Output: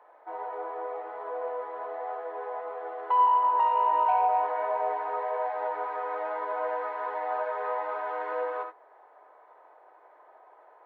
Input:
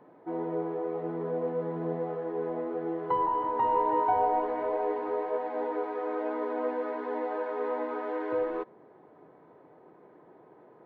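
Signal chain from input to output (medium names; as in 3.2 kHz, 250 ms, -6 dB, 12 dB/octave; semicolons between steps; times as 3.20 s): high-pass 670 Hz 24 dB/octave; treble shelf 2.9 kHz -9.5 dB; in parallel at -0.5 dB: peak limiter -26 dBFS, peak gain reduction 8 dB; on the sum: saturation -14.5 dBFS, distortion -27 dB; gated-style reverb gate 100 ms rising, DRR 5.5 dB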